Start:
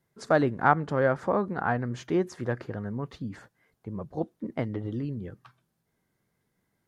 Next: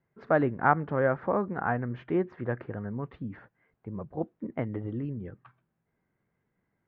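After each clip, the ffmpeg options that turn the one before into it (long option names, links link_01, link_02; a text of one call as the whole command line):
ffmpeg -i in.wav -af "lowpass=frequency=2500:width=0.5412,lowpass=frequency=2500:width=1.3066,volume=-1.5dB" out.wav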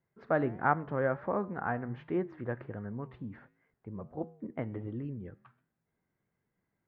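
ffmpeg -i in.wav -af "flanger=delay=9.1:depth=3.1:regen=-90:speed=1.4:shape=sinusoidal" out.wav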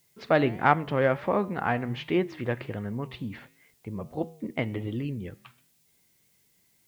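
ffmpeg -i in.wav -af "aexciter=amount=4.2:drive=9.2:freq=2300,volume=6.5dB" out.wav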